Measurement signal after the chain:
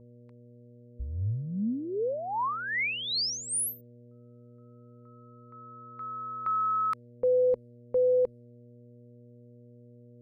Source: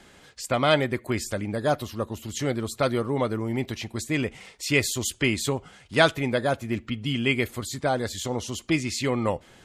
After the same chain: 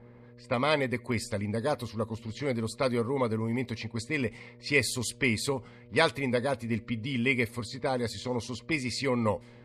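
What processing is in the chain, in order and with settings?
mains buzz 120 Hz, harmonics 5, -50 dBFS -4 dB/octave; rippled EQ curve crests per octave 0.92, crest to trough 8 dB; level-controlled noise filter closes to 1.1 kHz, open at -22.5 dBFS; trim -4.5 dB

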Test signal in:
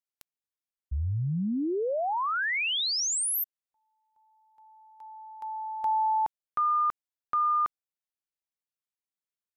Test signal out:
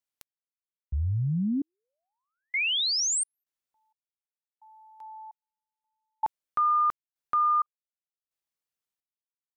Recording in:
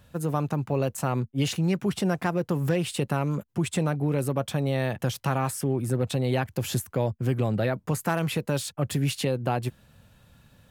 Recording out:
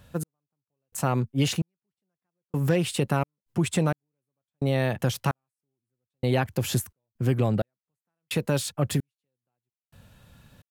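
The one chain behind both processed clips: trance gate "x...xxx....xxx.x" 65 bpm -60 dB; trim +2 dB

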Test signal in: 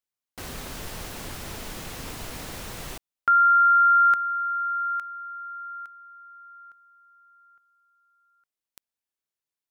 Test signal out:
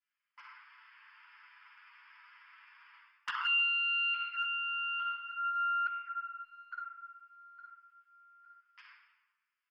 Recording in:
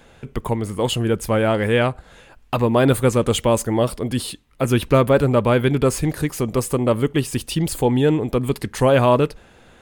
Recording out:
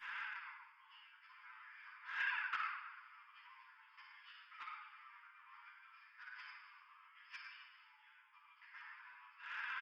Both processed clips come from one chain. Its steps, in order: tracing distortion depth 0.33 ms; peak limiter -11 dBFS; compression 12:1, threshold -31 dBFS; inverted gate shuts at -29 dBFS, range -25 dB; brick-wall FIR band-pass 840–5300 Hz; static phaser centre 1.7 kHz, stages 4; on a send: delay 109 ms -13 dB; on the sum: simulated room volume 860 m³, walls mixed, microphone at 9.8 m; touch-sensitive flanger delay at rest 11 ms, full sweep at -26.5 dBFS

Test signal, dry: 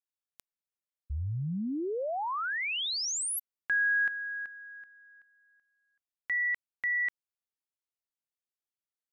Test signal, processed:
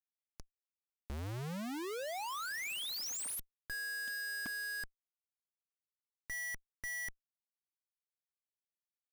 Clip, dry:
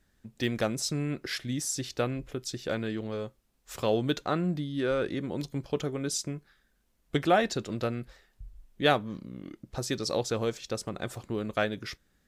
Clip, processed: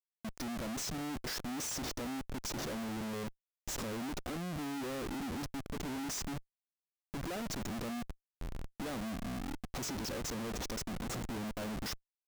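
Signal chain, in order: fifteen-band graphic EQ 100 Hz -9 dB, 250 Hz +10 dB, 1 kHz -4 dB, 2.5 kHz -10 dB, 6.3 kHz +10 dB; compression 5:1, threshold -37 dBFS; Schmitt trigger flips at -47.5 dBFS; trim +2 dB

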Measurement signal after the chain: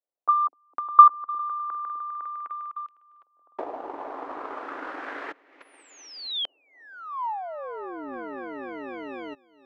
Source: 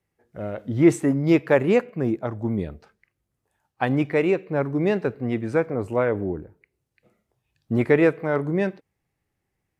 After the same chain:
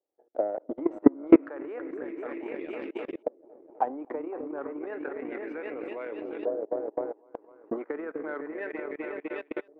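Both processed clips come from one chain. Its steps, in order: elliptic high-pass 280 Hz, stop band 40 dB; peak limiter -14 dBFS; delay with an opening low-pass 253 ms, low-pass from 400 Hz, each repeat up 2 oct, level -6 dB; level held to a coarse grid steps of 18 dB; LFO low-pass saw up 0.31 Hz 600–3300 Hz; transient shaper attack +10 dB, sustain -6 dB; trim -1.5 dB

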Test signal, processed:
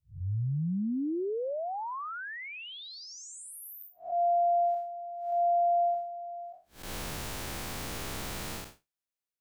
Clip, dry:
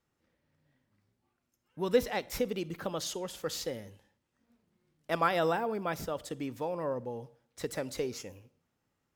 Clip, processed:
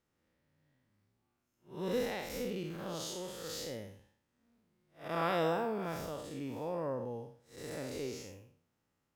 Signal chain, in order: spectral blur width 160 ms

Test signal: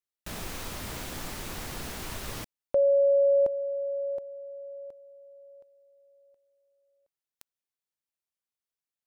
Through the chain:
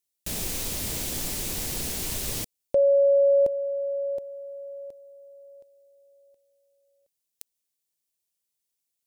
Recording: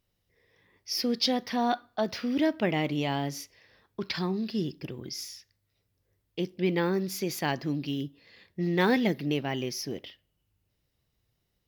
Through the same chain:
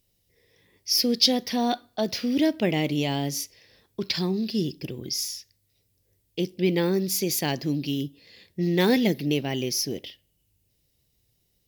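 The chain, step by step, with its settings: FFT filter 480 Hz 0 dB, 1.3 kHz -9 dB, 2.3 kHz -1 dB, 8.3 kHz +8 dB; trim +4 dB

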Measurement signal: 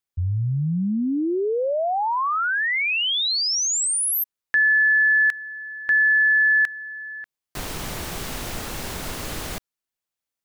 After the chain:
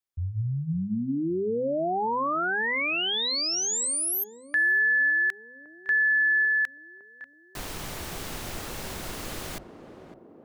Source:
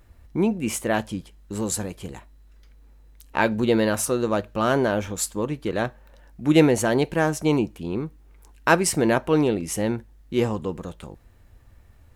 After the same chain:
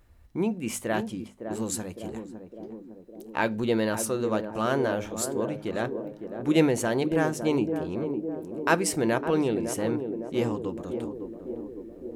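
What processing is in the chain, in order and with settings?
hum notches 50/100/150/200/250 Hz; on a send: band-passed feedback delay 558 ms, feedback 73%, band-pass 350 Hz, level -6 dB; on the sum: trim -5 dB

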